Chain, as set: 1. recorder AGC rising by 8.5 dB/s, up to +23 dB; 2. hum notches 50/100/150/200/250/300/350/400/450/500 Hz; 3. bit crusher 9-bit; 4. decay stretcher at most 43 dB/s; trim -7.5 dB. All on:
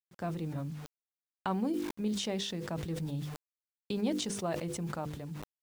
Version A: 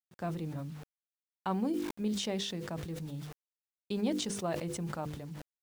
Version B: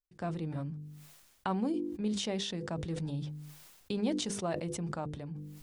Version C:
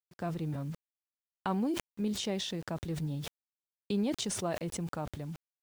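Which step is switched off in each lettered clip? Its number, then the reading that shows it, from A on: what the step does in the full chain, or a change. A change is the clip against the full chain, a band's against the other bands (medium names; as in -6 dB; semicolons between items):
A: 1, crest factor change -2.0 dB; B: 3, distortion -30 dB; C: 2, 8 kHz band +2.0 dB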